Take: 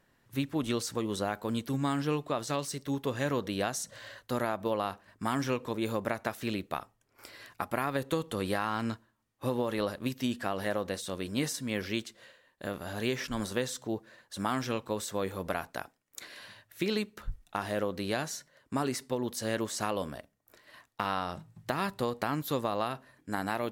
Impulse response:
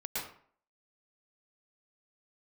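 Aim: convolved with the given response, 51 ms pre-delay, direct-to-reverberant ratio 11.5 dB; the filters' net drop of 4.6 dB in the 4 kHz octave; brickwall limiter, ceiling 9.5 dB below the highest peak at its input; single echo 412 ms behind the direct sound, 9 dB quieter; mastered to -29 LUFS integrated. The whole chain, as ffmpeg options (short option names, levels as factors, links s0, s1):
-filter_complex "[0:a]equalizer=f=4000:t=o:g=-6,alimiter=limit=0.0668:level=0:latency=1,aecho=1:1:412:0.355,asplit=2[s0][s1];[1:a]atrim=start_sample=2205,adelay=51[s2];[s1][s2]afir=irnorm=-1:irlink=0,volume=0.178[s3];[s0][s3]amix=inputs=2:normalize=0,volume=2.24"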